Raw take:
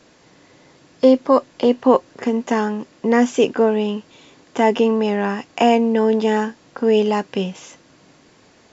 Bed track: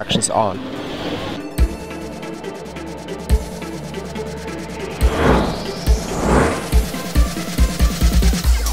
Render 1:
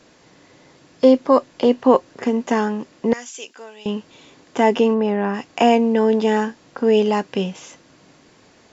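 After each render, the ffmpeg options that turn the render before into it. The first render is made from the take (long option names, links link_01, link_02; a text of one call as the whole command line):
ffmpeg -i in.wav -filter_complex "[0:a]asettb=1/sr,asplit=3[link_01][link_02][link_03];[link_01]atrim=end=3.134[link_04];[link_02]atrim=start=3.13:end=3.86,asetpts=PTS-STARTPTS,afade=type=in:duration=0.004:curve=qsin,afade=type=out:start_time=0.726:duration=0.004:curve=qsin,aderivative[link_05];[link_03]atrim=start=3.856[link_06];[link_04][link_05]acrossfade=duration=0.004:curve1=hsin:curve2=qsin[link_07];[link_07][link_06]acrossfade=duration=0.004:curve1=qsin:curve2=hsin,asplit=3[link_08][link_09][link_10];[link_08]afade=type=out:start_time=4.93:duration=0.02[link_11];[link_09]lowpass=frequency=1600:poles=1,afade=type=in:start_time=4.93:duration=0.02,afade=type=out:start_time=5.33:duration=0.02[link_12];[link_10]afade=type=in:start_time=5.33:duration=0.02[link_13];[link_11][link_12][link_13]amix=inputs=3:normalize=0" out.wav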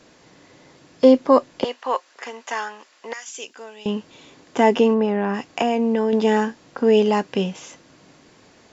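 ffmpeg -i in.wav -filter_complex "[0:a]asettb=1/sr,asplit=3[link_01][link_02][link_03];[link_01]atrim=end=1.644[link_04];[link_02]atrim=start=1.64:end=3.28,asetpts=PTS-STARTPTS,afade=type=in:duration=0.004:curve=qsin,afade=type=out:start_time=1.636:duration=0.004:curve=qsin,highpass=1000[link_05];[link_03]atrim=start=3.276[link_06];[link_04][link_05]acrossfade=duration=0.004:curve1=hsin:curve2=qsin[link_07];[link_07][link_06]acrossfade=duration=0.004:curve1=qsin:curve2=hsin,asettb=1/sr,asplit=3[link_08][link_09][link_10];[link_08]atrim=end=5.044[link_11];[link_09]atrim=start=5.04:end=6.13,asetpts=PTS-STARTPTS,afade=type=in:duration=0.004:curve=qsin,afade=type=out:start_time=1.086:duration=0.004:curve=qsin,acompressor=threshold=-15dB:ratio=6:attack=3.2:release=140:knee=1:detection=peak[link_12];[link_10]atrim=start=6.126[link_13];[link_11][link_12]acrossfade=duration=0.004:curve1=hsin:curve2=qsin[link_14];[link_14][link_13]acrossfade=duration=0.004:curve1=qsin:curve2=hsin" out.wav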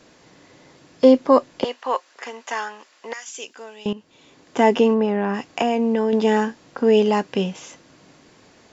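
ffmpeg -i in.wav -filter_complex "[0:a]asplit=2[link_01][link_02];[link_01]atrim=end=3.93,asetpts=PTS-STARTPTS,afade=type=out:start_time=3.926:duration=0.004:curve=hsin:silence=0.177828[link_03];[link_02]atrim=start=3.93,asetpts=PTS-STARTPTS,afade=type=in:duration=0.68:silence=0.177828[link_04];[link_03][link_04]concat=n=2:v=0:a=1" out.wav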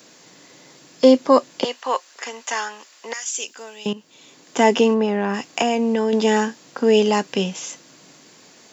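ffmpeg -i in.wav -af "highpass=frequency=130:width=0.5412,highpass=frequency=130:width=1.3066,aemphasis=mode=production:type=75kf" out.wav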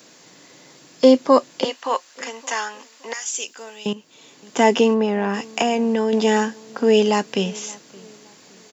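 ffmpeg -i in.wav -filter_complex "[0:a]asplit=2[link_01][link_02];[link_02]adelay=569,lowpass=frequency=2000:poles=1,volume=-23dB,asplit=2[link_03][link_04];[link_04]adelay=569,lowpass=frequency=2000:poles=1,volume=0.38,asplit=2[link_05][link_06];[link_06]adelay=569,lowpass=frequency=2000:poles=1,volume=0.38[link_07];[link_01][link_03][link_05][link_07]amix=inputs=4:normalize=0" out.wav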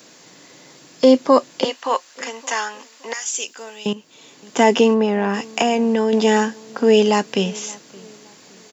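ffmpeg -i in.wav -af "volume=2dB,alimiter=limit=-3dB:level=0:latency=1" out.wav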